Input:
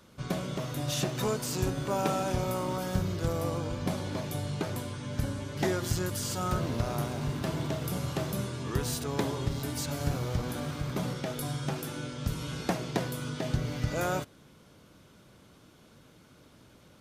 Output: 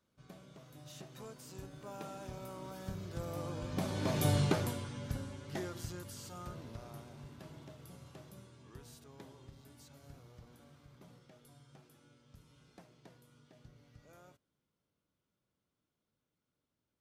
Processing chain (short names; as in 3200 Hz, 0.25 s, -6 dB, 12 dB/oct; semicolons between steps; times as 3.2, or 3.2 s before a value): Doppler pass-by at 4.33, 8 m/s, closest 1.5 m; gain +5 dB